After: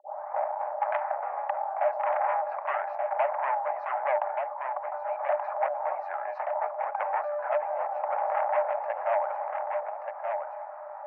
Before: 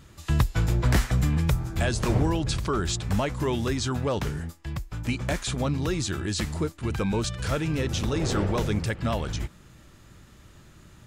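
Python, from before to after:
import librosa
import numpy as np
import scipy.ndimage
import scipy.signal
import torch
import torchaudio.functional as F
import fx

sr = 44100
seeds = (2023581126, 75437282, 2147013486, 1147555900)

p1 = fx.tape_start_head(x, sr, length_s=0.99)
p2 = scipy.signal.sosfilt(scipy.signal.cheby2(4, 60, 3100.0, 'lowpass', fs=sr, output='sos'), p1)
p3 = fx.fold_sine(p2, sr, drive_db=11, ceiling_db=-11.0)
p4 = p2 + (p3 * 10.0 ** (-4.0 / 20.0))
p5 = scipy.signal.sosfilt(scipy.signal.cheby1(6, 9, 580.0, 'highpass', fs=sr, output='sos'), p4)
p6 = p5 + fx.echo_single(p5, sr, ms=1179, db=-10.0, dry=0)
y = fx.env_flatten(p6, sr, amount_pct=50)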